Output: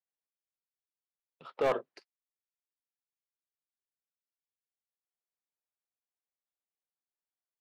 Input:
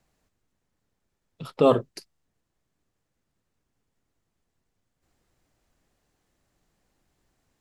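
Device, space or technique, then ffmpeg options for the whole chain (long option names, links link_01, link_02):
walkie-talkie: -af "highpass=520,lowpass=2500,asoftclip=type=hard:threshold=-18.5dB,agate=range=-24dB:threshold=-53dB:ratio=16:detection=peak,volume=-4dB"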